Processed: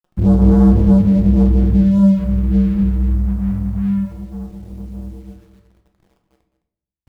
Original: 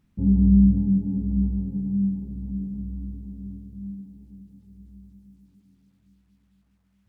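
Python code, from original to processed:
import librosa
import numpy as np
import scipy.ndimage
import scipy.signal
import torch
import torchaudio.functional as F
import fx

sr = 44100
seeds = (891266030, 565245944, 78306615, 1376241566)

p1 = fx.spec_gate(x, sr, threshold_db=-10, keep='strong')
p2 = fx.hum_notches(p1, sr, base_hz=60, count=6)
p3 = fx.env_lowpass_down(p2, sr, base_hz=300.0, full_db=-15.5)
p4 = fx.curve_eq(p3, sr, hz=(110.0, 300.0, 420.0, 1000.0), db=(0, -18, 9, -7))
p5 = fx.rider(p4, sr, range_db=4, speed_s=0.5)
p6 = p4 + (p5 * librosa.db_to_amplitude(2.5))
p7 = fx.leveller(p6, sr, passes=3)
p8 = fx.quant_dither(p7, sr, seeds[0], bits=10, dither='none')
p9 = p8 + fx.echo_single(p8, sr, ms=212, db=-13.5, dry=0)
p10 = fx.room_shoebox(p9, sr, seeds[1], volume_m3=160.0, walls='mixed', distance_m=0.69)
y = p10 * librosa.db_to_amplitude(3.0)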